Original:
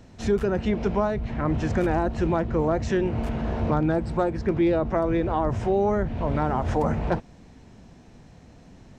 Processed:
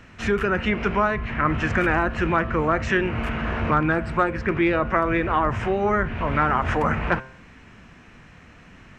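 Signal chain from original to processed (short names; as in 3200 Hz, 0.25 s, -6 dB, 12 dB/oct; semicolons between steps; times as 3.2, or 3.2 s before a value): band shelf 1800 Hz +13 dB; de-hum 131.1 Hz, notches 22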